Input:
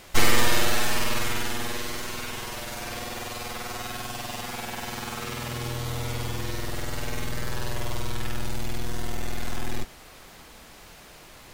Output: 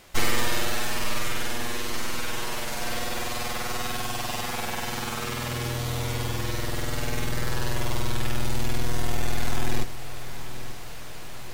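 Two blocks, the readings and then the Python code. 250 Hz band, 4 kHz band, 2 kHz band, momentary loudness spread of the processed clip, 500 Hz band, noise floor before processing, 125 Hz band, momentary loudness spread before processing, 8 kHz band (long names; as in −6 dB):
+1.0 dB, 0.0 dB, 0.0 dB, 12 LU, +0.5 dB, −48 dBFS, +2.5 dB, 22 LU, 0.0 dB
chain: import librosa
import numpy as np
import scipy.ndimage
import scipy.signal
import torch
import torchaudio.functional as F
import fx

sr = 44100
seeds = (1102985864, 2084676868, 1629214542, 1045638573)

y = fx.echo_feedback(x, sr, ms=885, feedback_pct=53, wet_db=-13.5)
y = fx.rider(y, sr, range_db=4, speed_s=2.0)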